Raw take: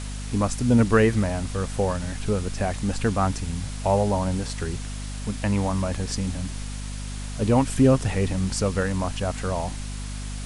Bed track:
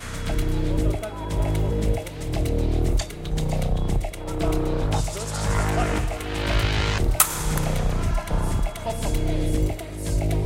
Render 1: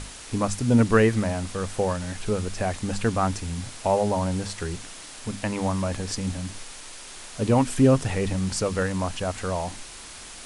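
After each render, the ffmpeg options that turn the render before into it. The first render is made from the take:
ffmpeg -i in.wav -af "bandreject=frequency=50:width_type=h:width=6,bandreject=frequency=100:width_type=h:width=6,bandreject=frequency=150:width_type=h:width=6,bandreject=frequency=200:width_type=h:width=6,bandreject=frequency=250:width_type=h:width=6" out.wav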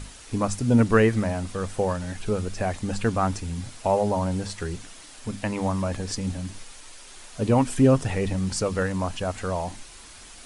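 ffmpeg -i in.wav -af "afftdn=noise_reduction=6:noise_floor=-42" out.wav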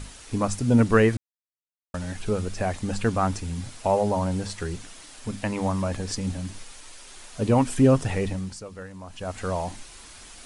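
ffmpeg -i in.wav -filter_complex "[0:a]asplit=5[link_01][link_02][link_03][link_04][link_05];[link_01]atrim=end=1.17,asetpts=PTS-STARTPTS,afade=type=out:start_time=1.166:duration=0.004:curve=hsin[link_06];[link_02]atrim=start=1.17:end=1.94,asetpts=PTS-STARTPTS,volume=0[link_07];[link_03]atrim=start=1.94:end=8.6,asetpts=PTS-STARTPTS,afade=type=in:duration=0.004:curve=hsin,afade=type=out:start_time=6.25:duration=0.41:silence=0.199526[link_08];[link_04]atrim=start=8.6:end=9.06,asetpts=PTS-STARTPTS,volume=-14dB[link_09];[link_05]atrim=start=9.06,asetpts=PTS-STARTPTS,afade=type=in:duration=0.41:silence=0.199526[link_10];[link_06][link_07][link_08][link_09][link_10]concat=n=5:v=0:a=1" out.wav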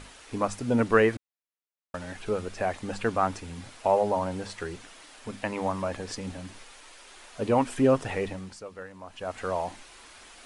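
ffmpeg -i in.wav -af "bass=frequency=250:gain=-11,treble=frequency=4000:gain=-8" out.wav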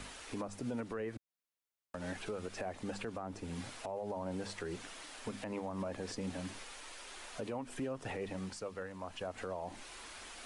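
ffmpeg -i in.wav -filter_complex "[0:a]acrossover=split=130|690[link_01][link_02][link_03];[link_01]acompressor=threshold=-52dB:ratio=4[link_04];[link_02]acompressor=threshold=-34dB:ratio=4[link_05];[link_03]acompressor=threshold=-43dB:ratio=4[link_06];[link_04][link_05][link_06]amix=inputs=3:normalize=0,alimiter=level_in=6.5dB:limit=-24dB:level=0:latency=1:release=114,volume=-6.5dB" out.wav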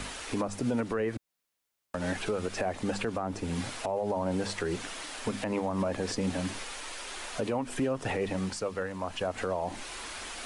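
ffmpeg -i in.wav -af "volume=9.5dB" out.wav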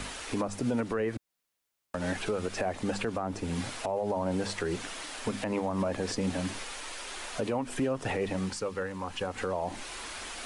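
ffmpeg -i in.wav -filter_complex "[0:a]asettb=1/sr,asplit=3[link_01][link_02][link_03];[link_01]atrim=end=8.434[link_04];[link_02]atrim=start=8.43:end=9.53,asetpts=PTS-STARTPTS,afade=type=in:duration=0.004:curve=qsin,afade=type=out:start_time=1.096:duration=0.004:curve=qsin,asuperstop=centerf=650:order=4:qfactor=5.2[link_05];[link_03]atrim=start=9.526[link_06];[link_04][link_05]acrossfade=duration=0.004:curve1=hsin:curve2=qsin[link_07];[link_07][link_06]acrossfade=duration=0.004:curve1=qsin:curve2=hsin" out.wav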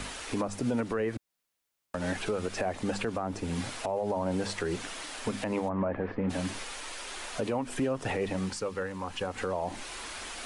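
ffmpeg -i in.wav -filter_complex "[0:a]asplit=3[link_01][link_02][link_03];[link_01]afade=type=out:start_time=5.68:duration=0.02[link_04];[link_02]lowpass=frequency=2100:width=0.5412,lowpass=frequency=2100:width=1.3066,afade=type=in:start_time=5.68:duration=0.02,afade=type=out:start_time=6.29:duration=0.02[link_05];[link_03]afade=type=in:start_time=6.29:duration=0.02[link_06];[link_04][link_05][link_06]amix=inputs=3:normalize=0" out.wav

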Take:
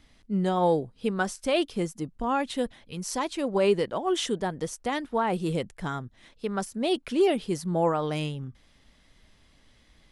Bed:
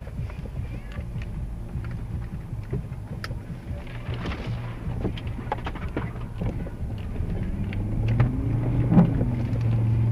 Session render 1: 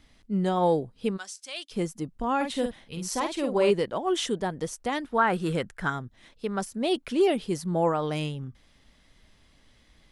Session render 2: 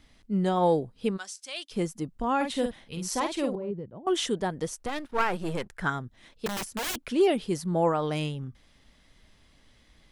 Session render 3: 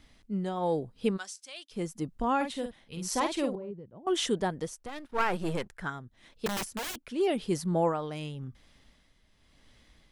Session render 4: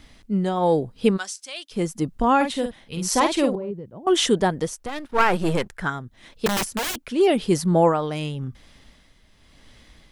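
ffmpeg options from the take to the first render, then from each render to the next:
ffmpeg -i in.wav -filter_complex "[0:a]asplit=3[link_01][link_02][link_03];[link_01]afade=type=out:start_time=1.16:duration=0.02[link_04];[link_02]bandpass=frequency=5800:width_type=q:width=0.94,afade=type=in:start_time=1.16:duration=0.02,afade=type=out:start_time=1.7:duration=0.02[link_05];[link_03]afade=type=in:start_time=1.7:duration=0.02[link_06];[link_04][link_05][link_06]amix=inputs=3:normalize=0,asettb=1/sr,asplit=3[link_07][link_08][link_09];[link_07]atrim=end=2.364[link_10];[link_08]atrim=start=2.36:end=3.71,asetpts=PTS-STARTPTS,afade=type=in:duration=0.004:curve=qsin,afade=type=out:start_time=1.346:duration=0.004:curve=qsin,asplit=2[link_11][link_12];[link_12]adelay=49,volume=-6dB[link_13];[link_11][link_13]amix=inputs=2:normalize=0,atrim=end_sample=59535[link_14];[link_09]atrim=start=3.706[link_15];[link_10][link_14]acrossfade=duration=0.004:curve1=hsin:curve2=qsin[link_16];[link_16][link_15]acrossfade=duration=0.004:curve1=qsin:curve2=hsin,asettb=1/sr,asplit=3[link_17][link_18][link_19];[link_17]atrim=end=5.184[link_20];[link_18]atrim=start=5.18:end=5.9,asetpts=PTS-STARTPTS,afade=type=in:duration=0.004:curve=qsin,afade=type=out:start_time=0.716:duration=0.004:curve=qsin,equalizer=frequency=1500:width_type=o:width=0.75:gain=12[link_21];[link_19]atrim=start=5.896[link_22];[link_20][link_21]acrossfade=duration=0.004:curve1=hsin:curve2=qsin[link_23];[link_23][link_22]acrossfade=duration=0.004:curve1=qsin:curve2=hsin" out.wav
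ffmpeg -i in.wav -filter_complex "[0:a]asettb=1/sr,asplit=3[link_01][link_02][link_03];[link_01]atrim=end=3.554[link_04];[link_02]atrim=start=3.55:end=4.07,asetpts=PTS-STARTPTS,afade=type=in:duration=0.004:curve=qsin,afade=type=out:start_time=0.516:duration=0.004:curve=qsin,bandpass=frequency=110:width_type=q:width=1.2[link_05];[link_03]atrim=start=4.066[link_06];[link_04][link_05]acrossfade=duration=0.004:curve1=hsin:curve2=qsin[link_07];[link_07][link_06]acrossfade=duration=0.004:curve1=qsin:curve2=hsin,asettb=1/sr,asplit=3[link_08][link_09][link_10];[link_08]atrim=end=4.864[link_11];[link_09]atrim=start=4.86:end=5.73,asetpts=PTS-STARTPTS,afade=type=in:duration=0.004:curve=qsin,afade=type=out:start_time=0.866:duration=0.004:curve=qsin,aeval=exprs='if(lt(val(0),0),0.251*val(0),val(0))':channel_layout=same[link_12];[link_10]atrim=start=5.726[link_13];[link_11][link_12]acrossfade=duration=0.004:curve1=hsin:curve2=qsin[link_14];[link_14][link_13]acrossfade=duration=0.004:curve1=qsin:curve2=hsin,asettb=1/sr,asplit=3[link_15][link_16][link_17];[link_15]atrim=end=6.464[link_18];[link_16]atrim=start=6.46:end=6.99,asetpts=PTS-STARTPTS,afade=type=in:duration=0.004:curve=qsin,afade=type=out:start_time=0.526:duration=0.004:curve=qsin,aeval=exprs='(mod(22.4*val(0)+1,2)-1)/22.4':channel_layout=same[link_19];[link_17]atrim=start=6.986[link_20];[link_18][link_19]acrossfade=duration=0.004:curve1=hsin:curve2=qsin[link_21];[link_21][link_20]acrossfade=duration=0.004:curve1=qsin:curve2=hsin" out.wav
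ffmpeg -i in.wav -af "tremolo=f=0.92:d=0.61" out.wav
ffmpeg -i in.wav -af "volume=9.5dB" out.wav

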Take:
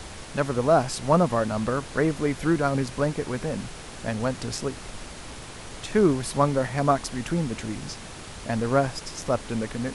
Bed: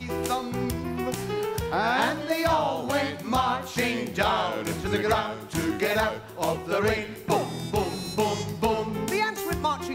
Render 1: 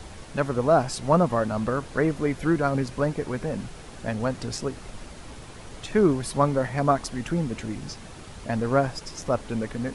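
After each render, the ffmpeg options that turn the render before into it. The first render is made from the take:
ffmpeg -i in.wav -af "afftdn=noise_reduction=6:noise_floor=-40" out.wav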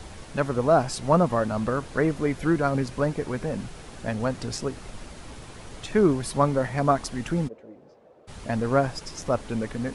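ffmpeg -i in.wav -filter_complex "[0:a]asplit=3[link_01][link_02][link_03];[link_01]afade=type=out:start_time=7.47:duration=0.02[link_04];[link_02]bandpass=frequency=530:width_type=q:width=3.8,afade=type=in:start_time=7.47:duration=0.02,afade=type=out:start_time=8.27:duration=0.02[link_05];[link_03]afade=type=in:start_time=8.27:duration=0.02[link_06];[link_04][link_05][link_06]amix=inputs=3:normalize=0" out.wav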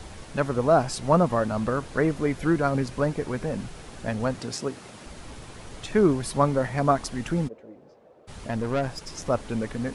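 ffmpeg -i in.wav -filter_complex "[0:a]asettb=1/sr,asplit=3[link_01][link_02][link_03];[link_01]atrim=end=4.394[link_04];[link_02]atrim=start=4.39:end=5.06,asetpts=PTS-STARTPTS,afade=type=in:duration=0.004:curve=qsin,afade=type=out:start_time=0.666:duration=0.004:curve=qsin,highpass=140[link_05];[link_03]atrim=start=5.056[link_06];[link_04][link_05]acrossfade=duration=0.004:curve1=hsin:curve2=qsin[link_07];[link_07][link_06]acrossfade=duration=0.004:curve1=qsin:curve2=hsin,asettb=1/sr,asplit=3[link_08][link_09][link_10];[link_08]atrim=end=8.474[link_11];[link_09]atrim=start=8.47:end=9.09,asetpts=PTS-STARTPTS,afade=type=in:duration=0.004:curve=qsin,afade=type=out:start_time=0.616:duration=0.004:curve=qsin,aeval=exprs='(tanh(10*val(0)+0.4)-tanh(0.4))/10':channel_layout=same[link_12];[link_10]atrim=start=9.086[link_13];[link_11][link_12]acrossfade=duration=0.004:curve1=hsin:curve2=qsin[link_14];[link_14][link_13]acrossfade=duration=0.004:curve1=qsin:curve2=hsin" out.wav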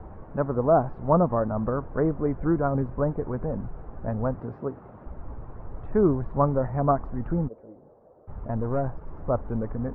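ffmpeg -i in.wav -af "lowpass=frequency=1200:width=0.5412,lowpass=frequency=1200:width=1.3066,asubboost=boost=2:cutoff=120" out.wav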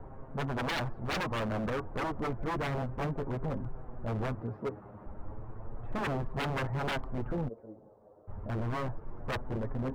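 ffmpeg -i in.wav -af "flanger=delay=7.4:depth=2.3:regen=22:speed=0.3:shape=sinusoidal,aeval=exprs='0.0422*(abs(mod(val(0)/0.0422+3,4)-2)-1)':channel_layout=same" out.wav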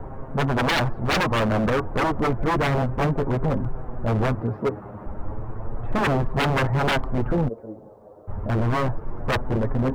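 ffmpeg -i in.wav -af "volume=11.5dB" out.wav

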